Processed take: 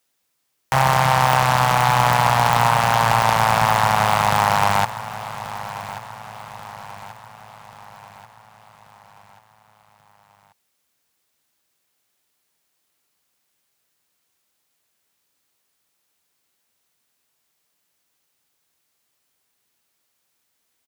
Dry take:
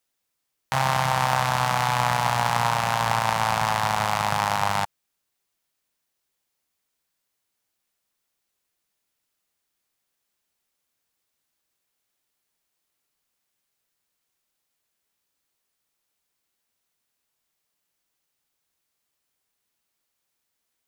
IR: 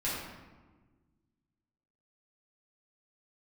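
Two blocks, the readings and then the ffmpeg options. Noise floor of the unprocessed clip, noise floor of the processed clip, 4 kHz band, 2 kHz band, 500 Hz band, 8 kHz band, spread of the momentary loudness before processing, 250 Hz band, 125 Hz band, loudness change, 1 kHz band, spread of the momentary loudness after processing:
-79 dBFS, -72 dBFS, +4.5 dB, +5.5 dB, +7.0 dB, +4.5 dB, 3 LU, +6.5 dB, +7.0 dB, +5.5 dB, +6.5 dB, 20 LU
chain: -af "highpass=65,aeval=exprs='0.251*(abs(mod(val(0)/0.251+3,4)-2)-1)':c=same,aecho=1:1:1135|2270|3405|4540|5675:0.188|0.0942|0.0471|0.0235|0.0118,volume=2.24"

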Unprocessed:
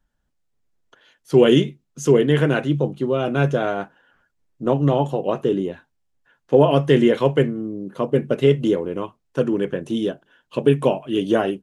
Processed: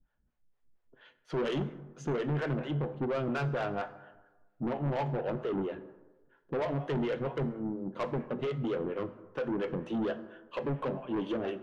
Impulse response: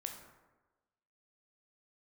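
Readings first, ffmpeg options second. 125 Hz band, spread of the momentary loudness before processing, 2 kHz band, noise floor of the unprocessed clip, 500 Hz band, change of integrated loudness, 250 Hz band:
-12.5 dB, 13 LU, -12.0 dB, -72 dBFS, -15.0 dB, -14.5 dB, -13.5 dB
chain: -filter_complex "[0:a]lowpass=2500,alimiter=limit=0.237:level=0:latency=1:release=361,flanger=delay=7.4:depth=1.3:regen=84:speed=2:shape=triangular,acrossover=split=440[s0][s1];[s0]aeval=exprs='val(0)*(1-1/2+1/2*cos(2*PI*4.3*n/s))':c=same[s2];[s1]aeval=exprs='val(0)*(1-1/2-1/2*cos(2*PI*4.3*n/s))':c=same[s3];[s2][s3]amix=inputs=2:normalize=0,asoftclip=type=tanh:threshold=0.02,asplit=2[s4][s5];[1:a]atrim=start_sample=2205[s6];[s5][s6]afir=irnorm=-1:irlink=0,volume=0.891[s7];[s4][s7]amix=inputs=2:normalize=0,volume=1.26"

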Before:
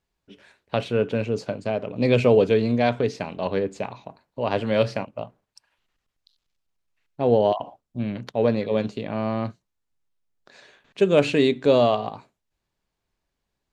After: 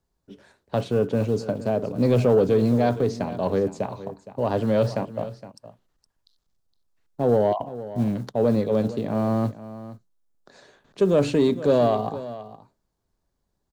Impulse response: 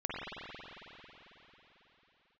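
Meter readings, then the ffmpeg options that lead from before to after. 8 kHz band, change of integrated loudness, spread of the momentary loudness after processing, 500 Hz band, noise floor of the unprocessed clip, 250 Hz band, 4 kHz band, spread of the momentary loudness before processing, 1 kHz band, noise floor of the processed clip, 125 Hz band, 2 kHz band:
no reading, -0.5 dB, 15 LU, -0.5 dB, -81 dBFS, +1.5 dB, -6.5 dB, 14 LU, -1.0 dB, -76 dBFS, +2.5 dB, -7.0 dB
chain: -filter_complex "[0:a]acrossover=split=160|4000[s0][s1][s2];[s0]acrusher=bits=3:mode=log:mix=0:aa=0.000001[s3];[s3][s1][s2]amix=inputs=3:normalize=0,equalizer=f=2500:t=o:w=1.1:g=-11,asplit=2[s4][s5];[s5]alimiter=limit=0.133:level=0:latency=1:release=34,volume=1[s6];[s4][s6]amix=inputs=2:normalize=0,lowshelf=f=380:g=3,asoftclip=type=tanh:threshold=0.562,aecho=1:1:465:0.178,volume=0.631"

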